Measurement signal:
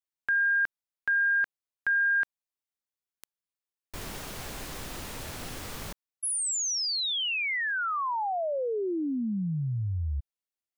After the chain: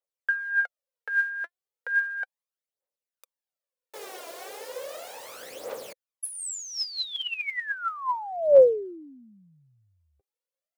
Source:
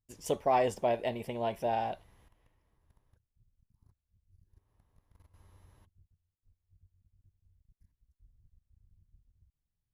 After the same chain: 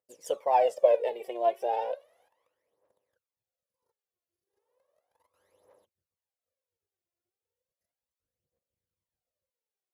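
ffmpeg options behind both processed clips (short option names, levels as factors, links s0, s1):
-af "highpass=f=520:t=q:w=6,aphaser=in_gain=1:out_gain=1:delay=3:decay=0.7:speed=0.35:type=triangular,volume=0.501"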